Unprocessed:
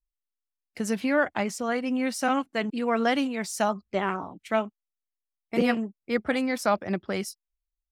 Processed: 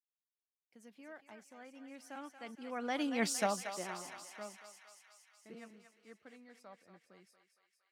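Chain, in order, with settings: Doppler pass-by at 3.26 s, 19 m/s, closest 1.6 m; high-pass 150 Hz; thinning echo 231 ms, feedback 73%, high-pass 790 Hz, level -7.5 dB

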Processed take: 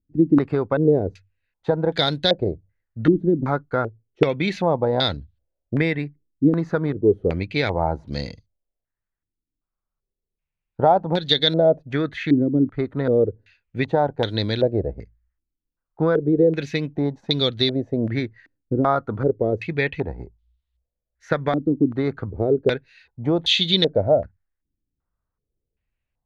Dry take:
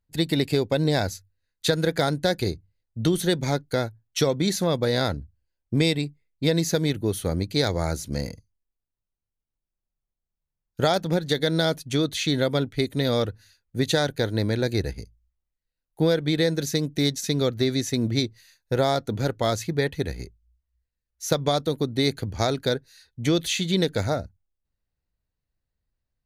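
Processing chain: step-sequenced low-pass 2.6 Hz 300–3600 Hz

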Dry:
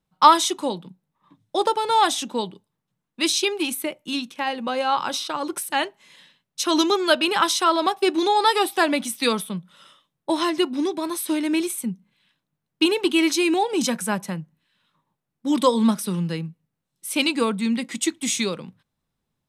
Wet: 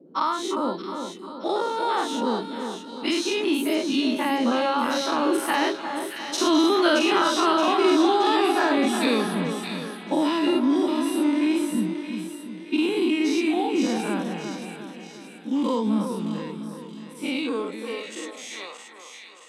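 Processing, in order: every event in the spectrogram widened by 120 ms; Doppler pass-by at 6.64 s, 12 m/s, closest 15 m; compression 3:1, threshold -28 dBFS, peak gain reduction 14.5 dB; treble shelf 5.9 kHz -12 dB; on a send: two-band feedback delay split 1.7 kHz, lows 355 ms, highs 623 ms, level -7 dB; on the sum: band noise 140–490 Hz -60 dBFS; high-pass sweep 240 Hz -> 790 Hz, 17.27–18.72 s; trim +5 dB

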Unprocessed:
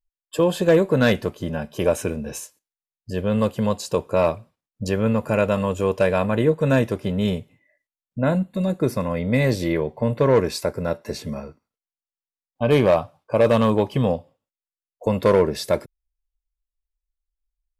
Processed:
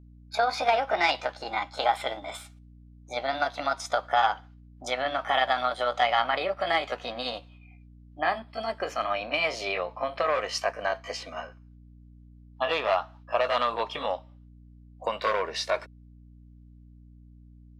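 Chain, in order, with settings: pitch bend over the whole clip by +6 st ending unshifted; compression, threshold -19 dBFS, peak gain reduction 7 dB; Butterworth band-pass 2 kHz, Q 0.53; hum 60 Hz, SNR 21 dB; trim +5.5 dB

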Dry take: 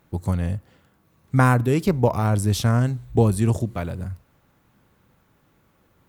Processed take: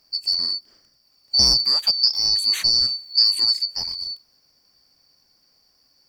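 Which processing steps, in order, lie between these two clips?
four frequency bands reordered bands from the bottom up 2341

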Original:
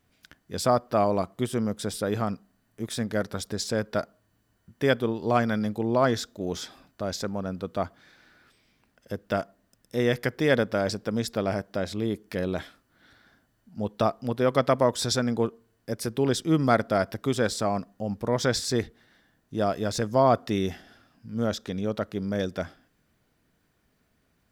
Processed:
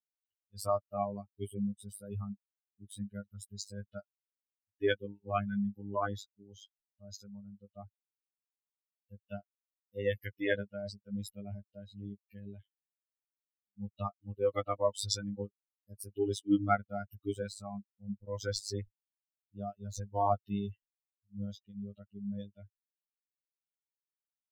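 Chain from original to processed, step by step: expander on every frequency bin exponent 3; robot voice 101 Hz

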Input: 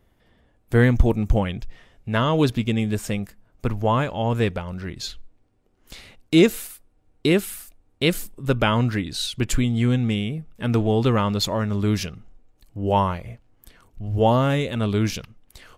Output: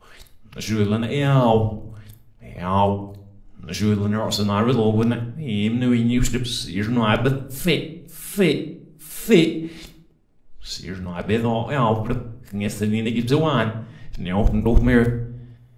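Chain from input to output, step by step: reverse the whole clip; on a send: reverberation RT60 0.65 s, pre-delay 5 ms, DRR 6 dB

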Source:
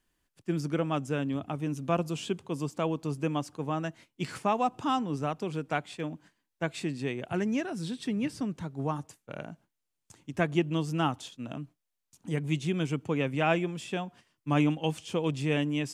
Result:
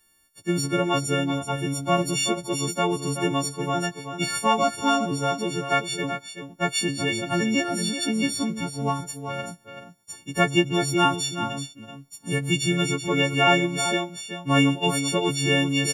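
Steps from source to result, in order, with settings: partials quantised in pitch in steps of 4 st; delay 381 ms -9 dB; trim +5.5 dB

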